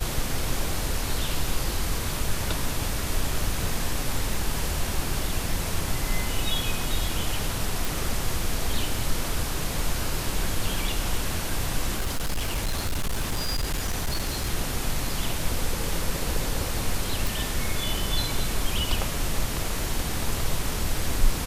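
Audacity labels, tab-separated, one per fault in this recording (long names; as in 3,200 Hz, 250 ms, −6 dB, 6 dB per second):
7.850000	7.850000	click
11.950000	14.500000	clipping −22 dBFS
17.270000	17.270000	click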